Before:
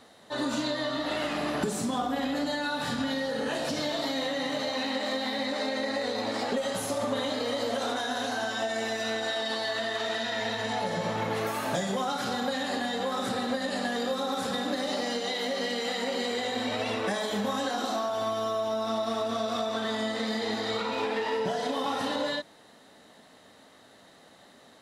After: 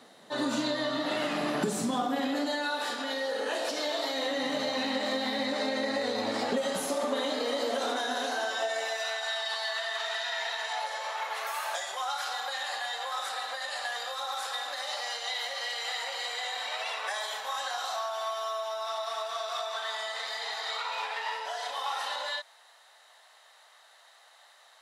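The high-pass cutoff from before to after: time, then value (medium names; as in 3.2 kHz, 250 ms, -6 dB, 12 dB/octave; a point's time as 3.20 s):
high-pass 24 dB/octave
1.90 s 130 Hz
2.74 s 350 Hz
4.12 s 350 Hz
4.75 s 110 Hz
6.52 s 110 Hz
7.02 s 250 Hz
8.14 s 250 Hz
9.25 s 750 Hz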